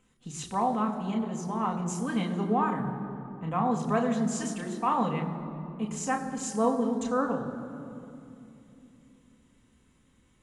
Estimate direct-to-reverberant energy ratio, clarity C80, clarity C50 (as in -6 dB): 1.5 dB, 9.0 dB, 8.5 dB